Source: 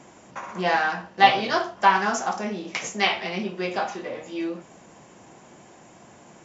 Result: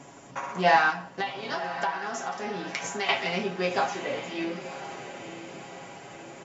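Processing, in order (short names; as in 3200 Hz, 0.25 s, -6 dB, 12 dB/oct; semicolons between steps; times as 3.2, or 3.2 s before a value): comb 7.2 ms, depth 59%; 0.9–3.09 compressor 6:1, threshold -30 dBFS, peak gain reduction 19.5 dB; diffused feedback echo 1.045 s, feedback 53%, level -11.5 dB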